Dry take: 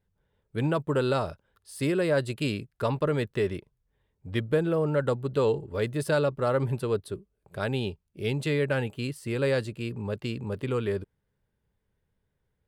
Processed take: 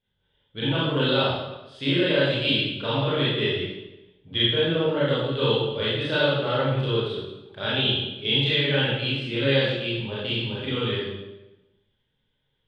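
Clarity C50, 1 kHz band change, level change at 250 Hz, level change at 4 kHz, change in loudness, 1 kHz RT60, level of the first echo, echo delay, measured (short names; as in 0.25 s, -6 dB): -2.5 dB, +3.5 dB, +3.0 dB, +18.0 dB, +5.0 dB, 0.95 s, none, none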